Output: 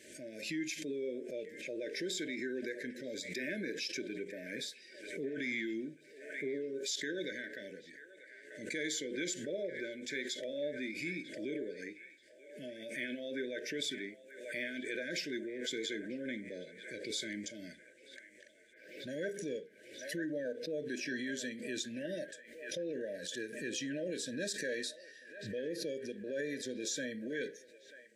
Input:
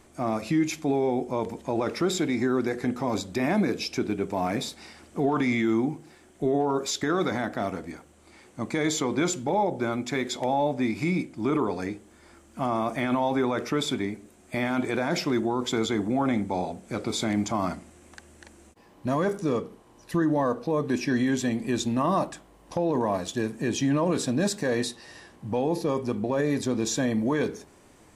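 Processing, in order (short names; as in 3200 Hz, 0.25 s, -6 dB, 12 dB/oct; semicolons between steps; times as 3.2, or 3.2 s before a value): weighting filter A; spectral noise reduction 7 dB; brick-wall FIR band-stop 640–1500 Hz; band-limited delay 0.939 s, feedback 52%, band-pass 1200 Hz, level -12 dB; backwards sustainer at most 60 dB/s; gain -8 dB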